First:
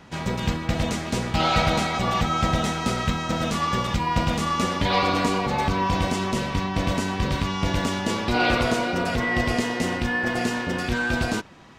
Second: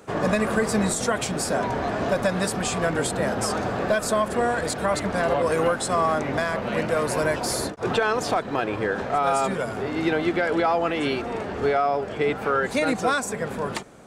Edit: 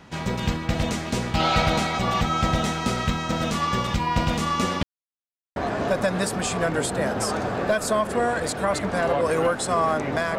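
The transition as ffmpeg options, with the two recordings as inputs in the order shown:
ffmpeg -i cue0.wav -i cue1.wav -filter_complex "[0:a]apad=whole_dur=10.38,atrim=end=10.38,asplit=2[link_01][link_02];[link_01]atrim=end=4.83,asetpts=PTS-STARTPTS,afade=type=out:start_time=4.826:duration=0.004:curve=hsin[link_03];[link_02]atrim=start=4.83:end=5.56,asetpts=PTS-STARTPTS,volume=0[link_04];[1:a]atrim=start=1.77:end=6.59,asetpts=PTS-STARTPTS,afade=type=in:duration=0.004:curve=hsin[link_05];[link_03][link_04][link_05]concat=n=3:v=0:a=1" out.wav

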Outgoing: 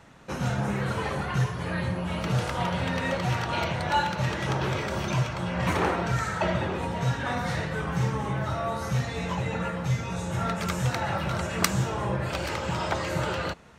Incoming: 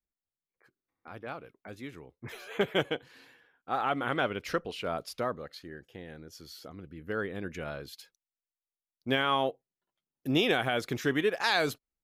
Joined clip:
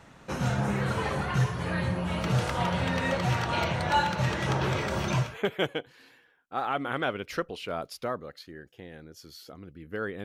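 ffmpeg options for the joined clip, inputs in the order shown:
ffmpeg -i cue0.wav -i cue1.wav -filter_complex "[0:a]apad=whole_dur=10.24,atrim=end=10.24,atrim=end=5.38,asetpts=PTS-STARTPTS[link_01];[1:a]atrim=start=2.32:end=7.4,asetpts=PTS-STARTPTS[link_02];[link_01][link_02]acrossfade=duration=0.22:curve1=tri:curve2=tri" out.wav

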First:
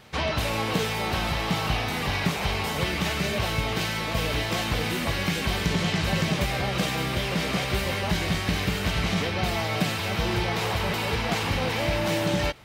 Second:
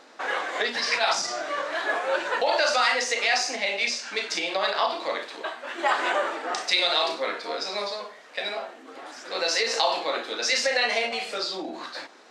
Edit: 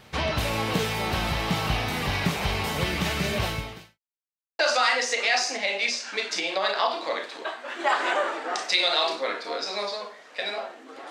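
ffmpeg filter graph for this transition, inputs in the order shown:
ffmpeg -i cue0.wav -i cue1.wav -filter_complex "[0:a]apad=whole_dur=11.1,atrim=end=11.1,asplit=2[link_01][link_02];[link_01]atrim=end=3.99,asetpts=PTS-STARTPTS,afade=type=out:start_time=3.45:duration=0.54:curve=qua[link_03];[link_02]atrim=start=3.99:end=4.59,asetpts=PTS-STARTPTS,volume=0[link_04];[1:a]atrim=start=2.58:end=9.09,asetpts=PTS-STARTPTS,afade=type=in:duration=0.004:curve=hsin[link_05];[link_03][link_04][link_05]concat=n=3:v=0:a=1" out.wav

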